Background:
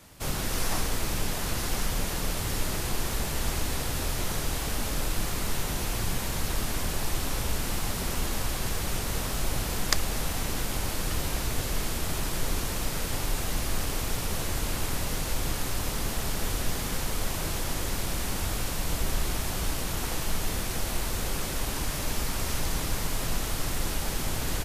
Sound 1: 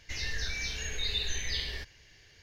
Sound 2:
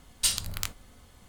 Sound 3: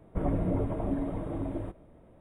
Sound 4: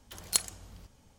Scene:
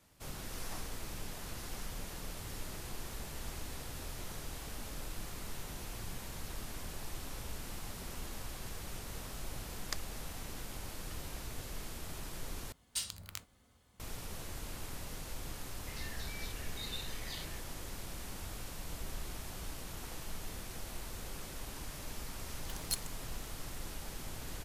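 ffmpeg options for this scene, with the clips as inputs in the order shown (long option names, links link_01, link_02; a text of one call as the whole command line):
ffmpeg -i bed.wav -i cue0.wav -i cue1.wav -i cue2.wav -i cue3.wav -filter_complex "[0:a]volume=-14dB[link_01];[2:a]highpass=52[link_02];[1:a]afwtdn=0.01[link_03];[4:a]alimiter=limit=-15dB:level=0:latency=1:release=378[link_04];[link_01]asplit=2[link_05][link_06];[link_05]atrim=end=12.724[link_07];[link_02]atrim=end=1.28,asetpts=PTS-STARTPTS,volume=-12dB[link_08];[link_06]atrim=start=13.996[link_09];[link_03]atrim=end=2.42,asetpts=PTS-STARTPTS,volume=-11dB,afade=type=in:duration=0.004:curve=hsin,afade=type=out:start_time=2.416:duration=0.004:curve=hsin,adelay=15780[link_10];[link_04]atrim=end=1.18,asetpts=PTS-STARTPTS,volume=-2dB,afade=type=in:duration=0.004:curve=hsin,afade=type=out:start_time=1.176:duration=0.004:curve=hsin,adelay=22580[link_11];[link_07][link_08]acrossfade=duration=0.004:curve1=hsin:curve2=hsin[link_12];[link_12][link_09]acrossfade=duration=0.004:curve1=hsin:curve2=hsin[link_13];[link_13][link_10][link_11]amix=inputs=3:normalize=0" out.wav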